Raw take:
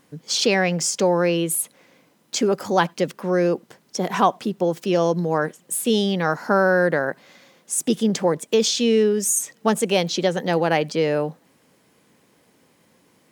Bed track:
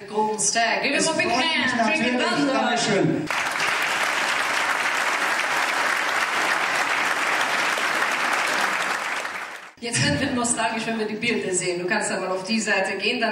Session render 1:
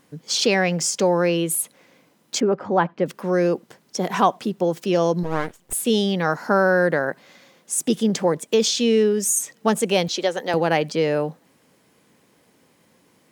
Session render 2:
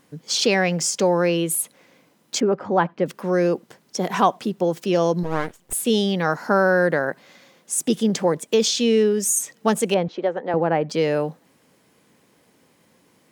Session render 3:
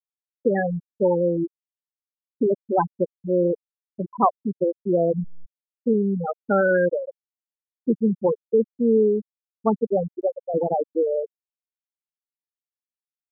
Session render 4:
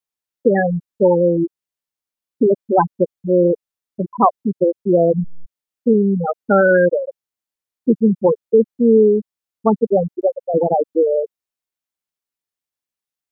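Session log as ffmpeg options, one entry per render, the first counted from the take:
-filter_complex "[0:a]asettb=1/sr,asplit=3[s0][s1][s2];[s0]atrim=end=2.404[s3];[s1]atrim=start=2.4:end=3.06,asetpts=PTS-STARTPTS,afade=t=in:d=0.004:c=qsin,afade=t=out:st=0.656:d=0.004:c=qsin,lowpass=1700[s4];[s2]atrim=start=3.056[s5];[s3][s4]acrossfade=d=0.004:c1=hsin:c2=qsin[s6];[s6][s5]acrossfade=d=0.004:c1=qsin:c2=hsin,asettb=1/sr,asplit=3[s7][s8][s9];[s7]atrim=end=5.234[s10];[s8]atrim=start=5.23:end=5.73,asetpts=PTS-STARTPTS,afade=t=in:d=0.004:c=qsin,afade=t=out:st=0.496:d=0.004:c=qsin,aeval=exprs='max(val(0),0)':c=same[s11];[s9]atrim=start=5.726[s12];[s10][s11]acrossfade=d=0.004:c1=hsin:c2=qsin[s13];[s13][s12]acrossfade=d=0.004:c1=qsin:c2=hsin,asettb=1/sr,asplit=3[s14][s15][s16];[s14]atrim=end=10.084[s17];[s15]atrim=start=10.08:end=10.54,asetpts=PTS-STARTPTS,afade=t=in:d=0.004:c=qsin,afade=t=out:st=0.456:d=0.004:c=qsin,highpass=370[s18];[s16]atrim=start=10.536[s19];[s17][s18]acrossfade=d=0.004:c1=hsin:c2=qsin[s20];[s20][s19]acrossfade=d=0.004:c1=qsin:c2=hsin"
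-filter_complex "[0:a]asettb=1/sr,asplit=3[s0][s1][s2];[s0]atrim=end=9.944[s3];[s1]atrim=start=9.94:end=10.9,asetpts=PTS-STARTPTS,afade=t=in:d=0.004:c=qsin,afade=t=out:st=0.956:d=0.004:c=qsin,lowpass=1400[s4];[s2]atrim=start=10.896[s5];[s3][s4]acrossfade=d=0.004:c1=hsin:c2=qsin[s6];[s6][s5]acrossfade=d=0.004:c1=qsin:c2=hsin"
-af "lowpass=f=2200:w=0.5412,lowpass=f=2200:w=1.3066,afftfilt=real='re*gte(hypot(re,im),0.501)':imag='im*gte(hypot(re,im),0.501)':win_size=1024:overlap=0.75"
-af "volume=2.11,alimiter=limit=0.891:level=0:latency=1"

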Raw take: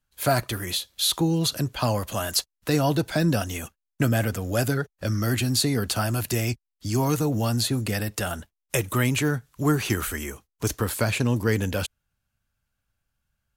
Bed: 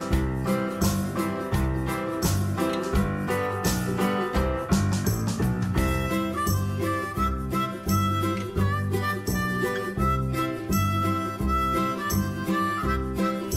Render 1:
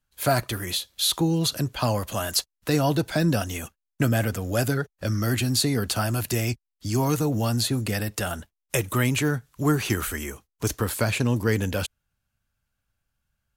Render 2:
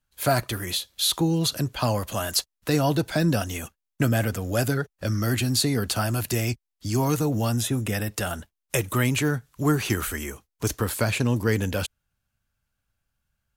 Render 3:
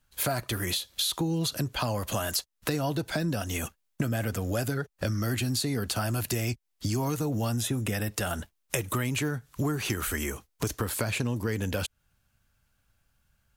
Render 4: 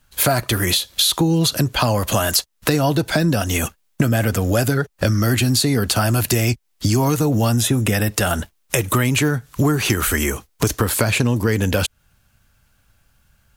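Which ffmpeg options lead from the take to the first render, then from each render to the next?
-af anull
-filter_complex "[0:a]asettb=1/sr,asplit=3[s0][s1][s2];[s0]atrim=end=7.524[s3];[s1]atrim=start=7.52:end=8.1,asetpts=PTS-STARTPTS,afade=t=in:d=0.004:c=qsin,afade=t=out:st=0.576:d=0.004:c=qsin,asuperstop=centerf=4400:order=4:qfactor=4.5[s4];[s2]atrim=start=8.096[s5];[s3][s4]acrossfade=d=0.004:c1=hsin:c2=qsin[s6];[s6][s5]acrossfade=d=0.004:c1=qsin:c2=hsin"
-filter_complex "[0:a]asplit=2[s0][s1];[s1]alimiter=limit=0.133:level=0:latency=1:release=285,volume=1.33[s2];[s0][s2]amix=inputs=2:normalize=0,acompressor=threshold=0.0398:ratio=4"
-af "volume=3.76,alimiter=limit=0.891:level=0:latency=1"

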